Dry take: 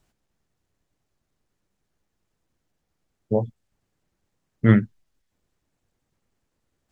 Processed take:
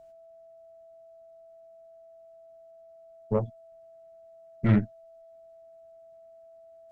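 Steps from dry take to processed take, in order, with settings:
steady tone 660 Hz −46 dBFS
tube saturation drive 14 dB, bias 0.7

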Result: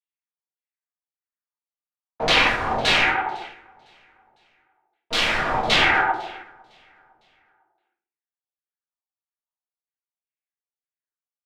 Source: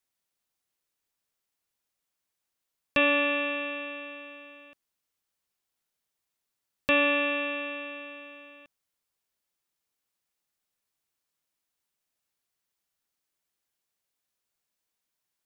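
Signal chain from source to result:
high-pass filter 330 Hz 12 dB per octave
leveller curve on the samples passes 5
cochlear-implant simulation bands 16
auto-filter low-pass saw down 0.3 Hz 650–2,300 Hz
wrap-around overflow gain 16 dB
auto-filter low-pass saw down 1.3 Hz 440–2,900 Hz
on a send: repeating echo 681 ms, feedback 45%, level −20 dB
on the sum: rectangular room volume 90 cubic metres, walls mixed, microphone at 0.88 metres
wrong playback speed 33 rpm record played at 45 rpm
expander for the loud parts 1.5 to 1, over −38 dBFS

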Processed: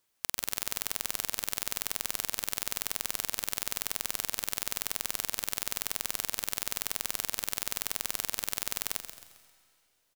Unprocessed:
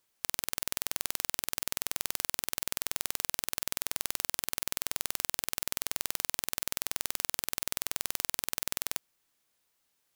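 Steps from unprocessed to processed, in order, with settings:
echo with shifted repeats 133 ms, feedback 39%, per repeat −50 Hz, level −10 dB
on a send at −17.5 dB: convolution reverb RT60 2.4 s, pre-delay 115 ms

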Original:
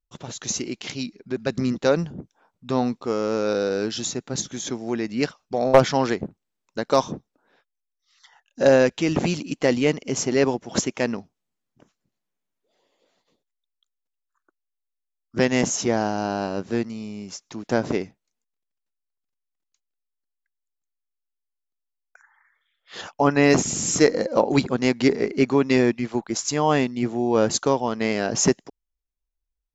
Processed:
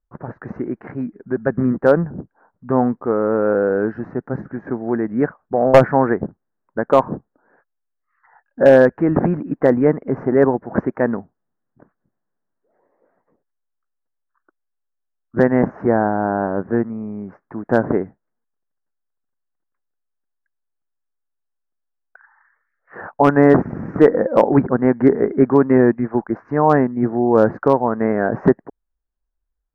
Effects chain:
elliptic low-pass filter 1,700 Hz, stop band 50 dB
hard clipping −8 dBFS, distortion −22 dB
level +6.5 dB

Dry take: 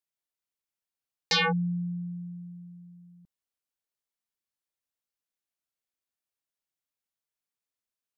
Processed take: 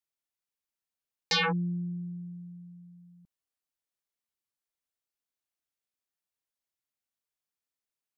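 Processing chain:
0:01.43–0:02.98: highs frequency-modulated by the lows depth 0.19 ms
level −2 dB

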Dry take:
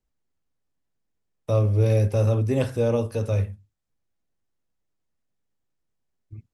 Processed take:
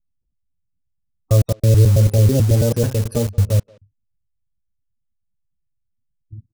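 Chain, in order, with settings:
slices reordered back to front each 109 ms, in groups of 3
gate on every frequency bin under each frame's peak −25 dB strong
in parallel at −4 dB: bit reduction 5 bits
on the sum: bass and treble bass +7 dB, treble +14 dB
far-end echo of a speakerphone 180 ms, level −22 dB
level −2 dB

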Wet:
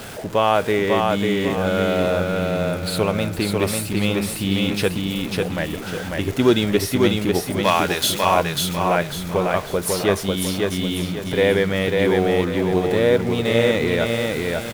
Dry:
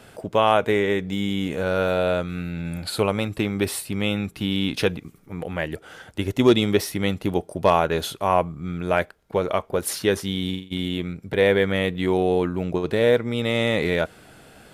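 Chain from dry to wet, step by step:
converter with a step at zero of −31 dBFS
0:07.64–0:08.23: tilt shelving filter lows −9 dB, about 930 Hz
on a send: repeating echo 546 ms, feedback 36%, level −3 dB

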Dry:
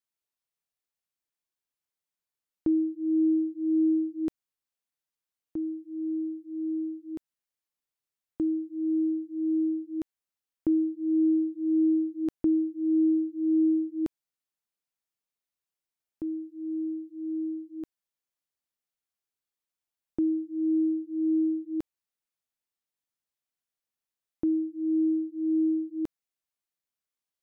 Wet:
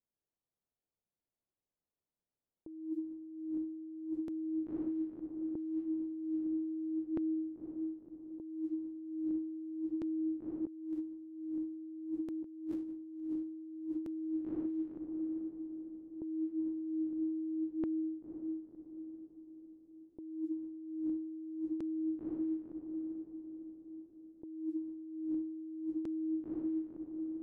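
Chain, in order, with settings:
feedback delay with all-pass diffusion 524 ms, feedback 54%, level −7 dB
low-pass that shuts in the quiet parts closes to 580 Hz, open at −27 dBFS
compressor whose output falls as the input rises −38 dBFS, ratio −1
level −1.5 dB

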